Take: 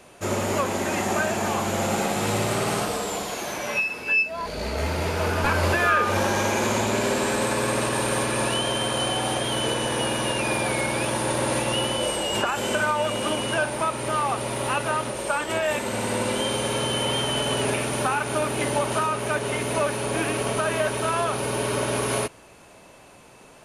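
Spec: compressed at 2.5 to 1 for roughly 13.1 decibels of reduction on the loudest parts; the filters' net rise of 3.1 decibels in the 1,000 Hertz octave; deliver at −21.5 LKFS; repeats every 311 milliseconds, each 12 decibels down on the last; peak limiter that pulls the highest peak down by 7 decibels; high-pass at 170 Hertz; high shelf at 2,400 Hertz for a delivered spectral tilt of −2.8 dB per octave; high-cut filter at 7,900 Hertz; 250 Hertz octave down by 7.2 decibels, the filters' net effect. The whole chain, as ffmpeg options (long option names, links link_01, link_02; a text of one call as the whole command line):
ffmpeg -i in.wav -af "highpass=170,lowpass=7900,equalizer=frequency=250:width_type=o:gain=-9,equalizer=frequency=1000:width_type=o:gain=5,highshelf=frequency=2400:gain=-3.5,acompressor=threshold=-35dB:ratio=2.5,alimiter=level_in=1.5dB:limit=-24dB:level=0:latency=1,volume=-1.5dB,aecho=1:1:311|622|933:0.251|0.0628|0.0157,volume=13dB" out.wav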